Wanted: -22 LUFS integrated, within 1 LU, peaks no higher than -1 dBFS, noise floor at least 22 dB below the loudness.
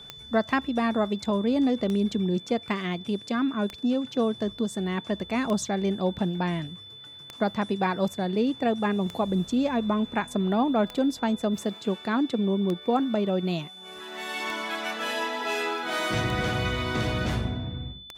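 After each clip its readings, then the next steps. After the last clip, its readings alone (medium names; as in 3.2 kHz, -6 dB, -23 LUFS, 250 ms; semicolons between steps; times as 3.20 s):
clicks found 11; steady tone 3.5 kHz; tone level -43 dBFS; loudness -27.0 LUFS; peak level -11.5 dBFS; loudness target -22.0 LUFS
-> de-click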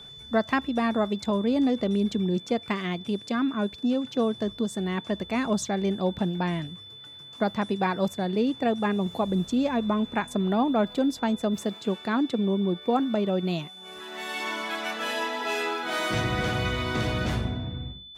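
clicks found 0; steady tone 3.5 kHz; tone level -43 dBFS
-> band-stop 3.5 kHz, Q 30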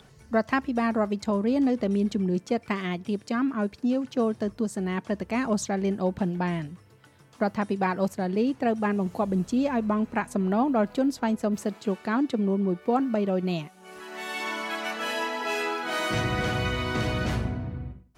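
steady tone not found; loudness -27.5 LUFS; peak level -11.5 dBFS; loudness target -22.0 LUFS
-> trim +5.5 dB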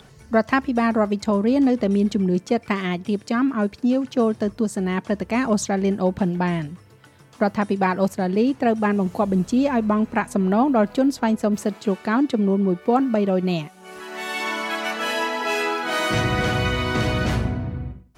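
loudness -22.0 LUFS; peak level -6.0 dBFS; noise floor -49 dBFS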